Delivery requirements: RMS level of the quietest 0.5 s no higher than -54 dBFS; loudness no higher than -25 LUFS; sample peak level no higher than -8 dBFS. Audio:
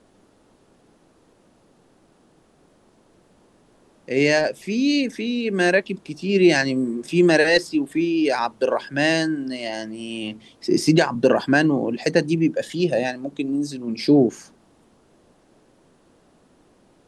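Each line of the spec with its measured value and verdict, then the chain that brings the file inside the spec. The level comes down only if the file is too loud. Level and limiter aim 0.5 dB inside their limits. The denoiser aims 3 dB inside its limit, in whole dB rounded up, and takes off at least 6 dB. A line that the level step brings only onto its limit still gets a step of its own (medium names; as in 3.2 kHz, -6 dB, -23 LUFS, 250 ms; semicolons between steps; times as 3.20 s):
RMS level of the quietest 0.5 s -58 dBFS: pass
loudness -21.0 LUFS: fail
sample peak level -4.5 dBFS: fail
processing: trim -4.5 dB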